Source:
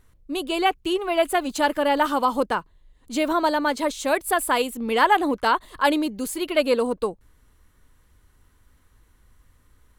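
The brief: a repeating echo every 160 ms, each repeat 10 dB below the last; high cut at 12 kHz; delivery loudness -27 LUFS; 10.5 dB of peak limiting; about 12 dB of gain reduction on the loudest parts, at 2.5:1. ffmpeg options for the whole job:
-af "lowpass=12000,acompressor=threshold=0.0224:ratio=2.5,alimiter=level_in=1.58:limit=0.0631:level=0:latency=1,volume=0.631,aecho=1:1:160|320|480|640:0.316|0.101|0.0324|0.0104,volume=2.99"

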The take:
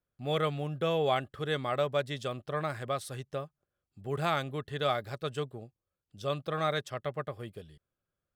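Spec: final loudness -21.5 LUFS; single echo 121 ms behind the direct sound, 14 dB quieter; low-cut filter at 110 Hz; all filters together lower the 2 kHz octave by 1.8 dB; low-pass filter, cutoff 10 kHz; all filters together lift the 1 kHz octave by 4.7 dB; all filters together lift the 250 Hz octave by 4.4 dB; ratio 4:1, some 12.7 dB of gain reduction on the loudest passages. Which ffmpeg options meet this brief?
-af "highpass=110,lowpass=10000,equalizer=f=250:t=o:g=7,equalizer=f=1000:t=o:g=8,equalizer=f=2000:t=o:g=-6,acompressor=threshold=0.0158:ratio=4,aecho=1:1:121:0.2,volume=8.41"

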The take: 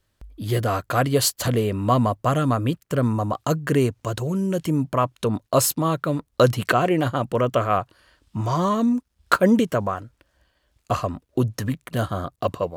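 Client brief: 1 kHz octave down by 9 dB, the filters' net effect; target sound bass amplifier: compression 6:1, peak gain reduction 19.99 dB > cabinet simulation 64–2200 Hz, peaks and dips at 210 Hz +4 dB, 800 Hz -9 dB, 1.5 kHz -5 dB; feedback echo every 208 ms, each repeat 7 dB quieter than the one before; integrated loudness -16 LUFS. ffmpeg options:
-af "equalizer=f=1000:t=o:g=-7.5,aecho=1:1:208|416|624|832|1040:0.447|0.201|0.0905|0.0407|0.0183,acompressor=threshold=0.02:ratio=6,highpass=f=64:w=0.5412,highpass=f=64:w=1.3066,equalizer=f=210:t=q:w=4:g=4,equalizer=f=800:t=q:w=4:g=-9,equalizer=f=1500:t=q:w=4:g=-5,lowpass=f=2200:w=0.5412,lowpass=f=2200:w=1.3066,volume=11.2"

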